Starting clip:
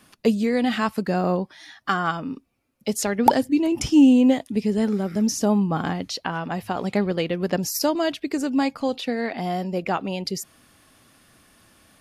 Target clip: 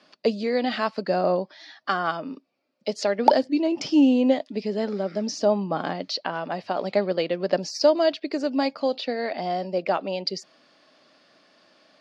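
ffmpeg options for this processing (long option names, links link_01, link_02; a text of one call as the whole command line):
ffmpeg -i in.wav -af "highpass=frequency=190:width=0.5412,highpass=frequency=190:width=1.3066,equalizer=frequency=220:width_type=q:width=4:gain=-5,equalizer=frequency=600:width_type=q:width=4:gain=10,equalizer=frequency=4600:width_type=q:width=4:gain=8,lowpass=frequency=5400:width=0.5412,lowpass=frequency=5400:width=1.3066,volume=-2.5dB" out.wav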